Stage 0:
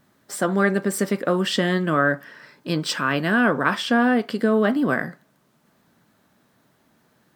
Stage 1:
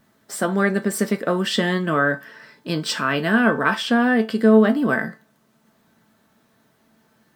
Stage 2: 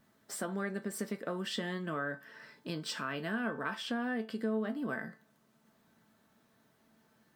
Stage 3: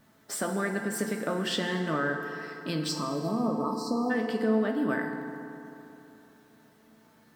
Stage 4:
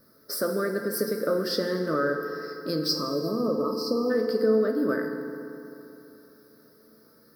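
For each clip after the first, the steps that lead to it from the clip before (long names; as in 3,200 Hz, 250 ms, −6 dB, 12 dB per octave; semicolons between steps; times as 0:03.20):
tuned comb filter 220 Hz, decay 0.23 s, harmonics all, mix 70%; level +8.5 dB
downward compressor 2 to 1, threshold −32 dBFS, peak gain reduction 13 dB; level −8 dB
time-frequency box erased 0:02.89–0:04.10, 1,300–3,900 Hz; feedback delay network reverb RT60 3.1 s, high-frequency decay 0.55×, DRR 4 dB; level +6.5 dB
drawn EQ curve 210 Hz 0 dB, 540 Hz +11 dB, 790 Hz −13 dB, 1,300 Hz +6 dB, 3,000 Hz −17 dB, 5,000 Hz +14 dB, 7,300 Hz −13 dB, 11,000 Hz +12 dB; level −1.5 dB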